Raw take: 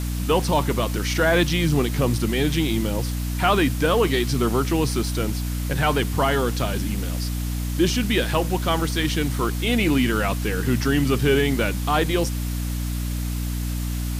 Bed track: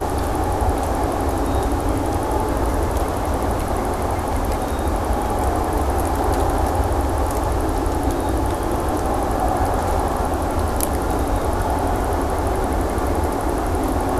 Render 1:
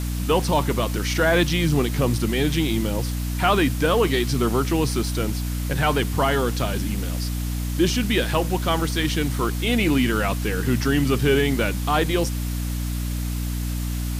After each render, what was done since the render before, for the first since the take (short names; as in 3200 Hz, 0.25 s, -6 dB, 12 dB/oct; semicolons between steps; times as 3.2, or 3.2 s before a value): nothing audible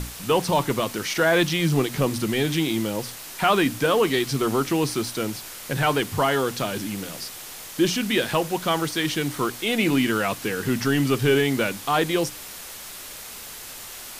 notches 60/120/180/240/300 Hz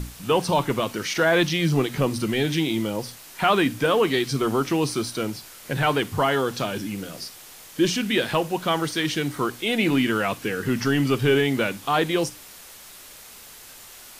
noise print and reduce 6 dB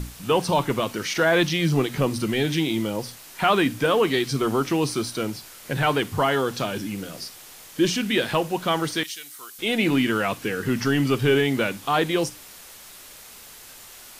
9.03–9.59 differentiator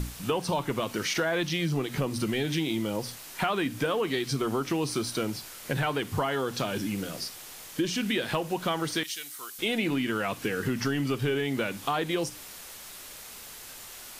compressor, threshold -25 dBFS, peak gain reduction 10 dB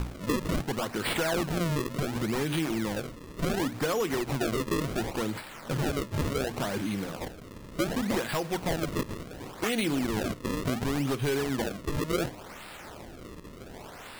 one-sided fold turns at -22 dBFS; decimation with a swept rate 33×, swing 160% 0.69 Hz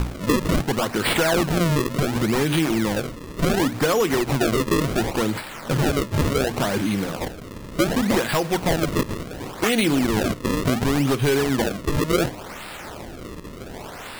gain +8.5 dB